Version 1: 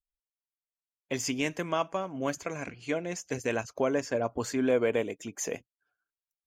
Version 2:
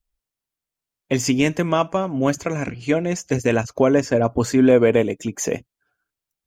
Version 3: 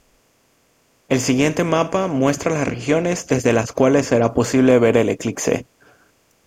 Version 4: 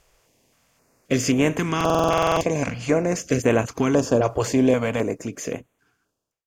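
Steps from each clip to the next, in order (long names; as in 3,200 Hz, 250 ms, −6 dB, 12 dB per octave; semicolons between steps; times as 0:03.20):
low-shelf EQ 320 Hz +9.5 dB; level +8 dB
compressor on every frequency bin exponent 0.6; level −1 dB
fade-out on the ending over 2.07 s; buffer that repeats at 0:01.76, samples 2,048, times 13; notch on a step sequencer 3.8 Hz 240–5,000 Hz; level −2.5 dB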